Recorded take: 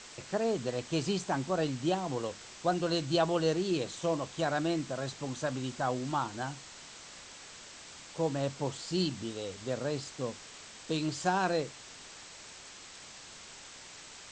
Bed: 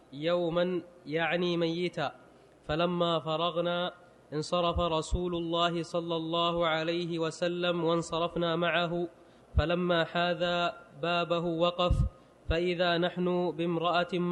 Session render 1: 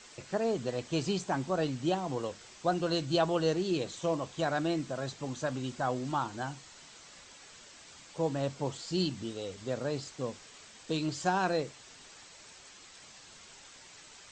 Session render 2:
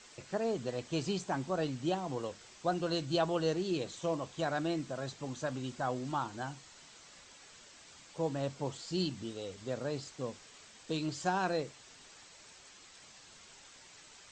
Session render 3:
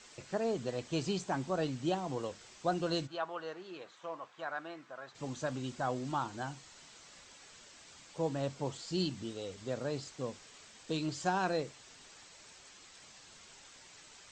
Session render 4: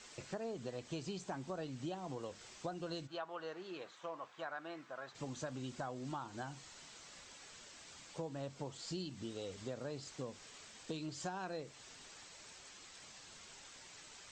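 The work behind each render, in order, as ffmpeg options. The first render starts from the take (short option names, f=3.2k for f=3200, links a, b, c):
-af "afftdn=nr=6:nf=-50"
-af "volume=-3dB"
-filter_complex "[0:a]asplit=3[a][b][c];[a]afade=t=out:st=3.06:d=0.02[d];[b]bandpass=f=1.3k:t=q:w=1.4,afade=t=in:st=3.06:d=0.02,afade=t=out:st=5.14:d=0.02[e];[c]afade=t=in:st=5.14:d=0.02[f];[d][e][f]amix=inputs=3:normalize=0"
-af "acompressor=threshold=-40dB:ratio=6"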